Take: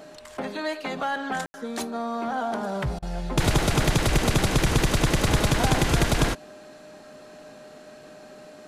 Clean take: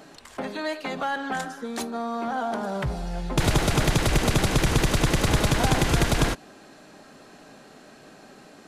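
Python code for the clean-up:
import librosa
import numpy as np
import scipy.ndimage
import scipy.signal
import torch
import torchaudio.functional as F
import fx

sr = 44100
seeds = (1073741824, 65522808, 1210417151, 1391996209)

y = fx.notch(x, sr, hz=610.0, q=30.0)
y = fx.fix_ambience(y, sr, seeds[0], print_start_s=6.59, print_end_s=7.09, start_s=1.46, end_s=1.54)
y = fx.fix_interpolate(y, sr, at_s=(2.99,), length_ms=33.0)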